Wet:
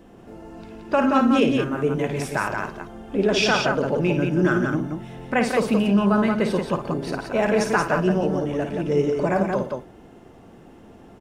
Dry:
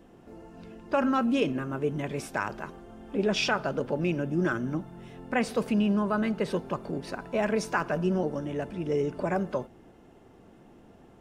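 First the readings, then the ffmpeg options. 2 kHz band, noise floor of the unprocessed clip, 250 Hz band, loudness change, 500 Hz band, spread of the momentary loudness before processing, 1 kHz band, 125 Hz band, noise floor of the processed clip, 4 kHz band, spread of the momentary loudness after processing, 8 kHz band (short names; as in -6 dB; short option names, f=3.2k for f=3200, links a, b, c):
+7.5 dB, -55 dBFS, +7.0 dB, +7.0 dB, +7.5 dB, 13 LU, +7.5 dB, +7.0 dB, -47 dBFS, +7.5 dB, 12 LU, +7.5 dB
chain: -af "aecho=1:1:55|116|176:0.422|0.126|0.596,volume=5.5dB"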